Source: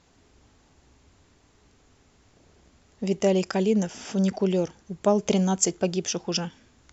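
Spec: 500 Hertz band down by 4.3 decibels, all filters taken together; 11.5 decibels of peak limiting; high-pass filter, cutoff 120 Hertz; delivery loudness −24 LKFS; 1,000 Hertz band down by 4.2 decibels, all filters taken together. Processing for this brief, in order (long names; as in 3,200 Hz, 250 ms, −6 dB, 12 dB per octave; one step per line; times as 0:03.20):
high-pass filter 120 Hz
parametric band 500 Hz −5 dB
parametric band 1,000 Hz −3.5 dB
level +6.5 dB
brickwall limiter −12.5 dBFS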